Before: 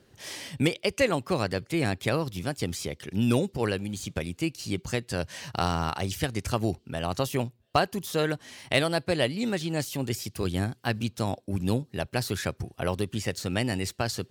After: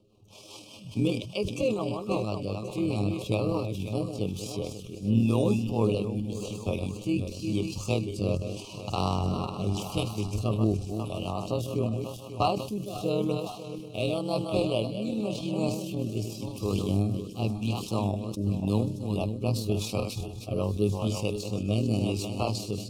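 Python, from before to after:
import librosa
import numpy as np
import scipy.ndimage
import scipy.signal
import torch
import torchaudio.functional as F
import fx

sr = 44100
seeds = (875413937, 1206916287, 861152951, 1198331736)

y = fx.reverse_delay_fb(x, sr, ms=169, feedback_pct=56, wet_db=-7.0)
y = scipy.signal.sosfilt(scipy.signal.ellip(3, 1.0, 40, [1200.0, 2500.0], 'bandstop', fs=sr, output='sos'), y)
y = fx.high_shelf(y, sr, hz=3400.0, db=-8.0)
y = fx.rider(y, sr, range_db=10, speed_s=2.0)
y = fx.stretch_grains(y, sr, factor=1.6, grain_ms=51.0)
y = fx.rotary_switch(y, sr, hz=5.0, then_hz=0.9, switch_at_s=3.33)
y = fx.echo_wet_highpass(y, sr, ms=1081, feedback_pct=44, hz=5000.0, wet_db=-11)
y = fx.sustainer(y, sr, db_per_s=77.0)
y = F.gain(torch.from_numpy(y), 1.5).numpy()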